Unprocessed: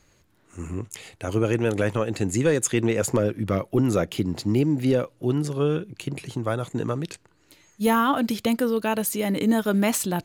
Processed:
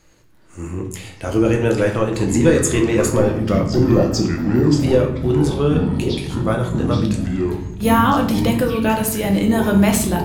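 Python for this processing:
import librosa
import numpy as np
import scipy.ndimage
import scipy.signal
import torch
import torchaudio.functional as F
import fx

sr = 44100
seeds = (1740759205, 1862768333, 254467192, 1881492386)

y = fx.spec_repair(x, sr, seeds[0], start_s=3.76, length_s=0.92, low_hz=1100.0, high_hz=12000.0, source='both')
y = fx.room_shoebox(y, sr, seeds[1], volume_m3=100.0, walls='mixed', distance_m=0.69)
y = fx.echo_pitch(y, sr, ms=418, semitones=-6, count=3, db_per_echo=-6.0)
y = y * librosa.db_to_amplitude(3.0)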